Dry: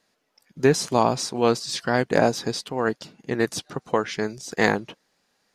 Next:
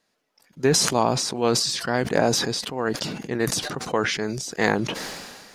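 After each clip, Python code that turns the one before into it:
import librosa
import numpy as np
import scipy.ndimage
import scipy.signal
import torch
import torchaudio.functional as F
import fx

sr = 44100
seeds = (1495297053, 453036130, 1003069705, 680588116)

y = fx.sustainer(x, sr, db_per_s=34.0)
y = y * librosa.db_to_amplitude(-2.5)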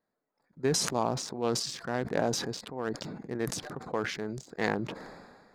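y = fx.wiener(x, sr, points=15)
y = y * librosa.db_to_amplitude(-8.0)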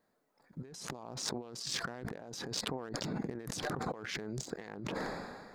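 y = fx.over_compress(x, sr, threshold_db=-42.0, ratio=-1.0)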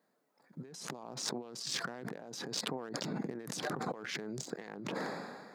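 y = scipy.signal.sosfilt(scipy.signal.butter(4, 140.0, 'highpass', fs=sr, output='sos'), x)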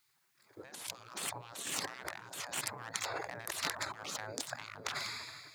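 y = fx.spec_gate(x, sr, threshold_db=-15, keep='weak')
y = y * librosa.db_to_amplitude(11.0)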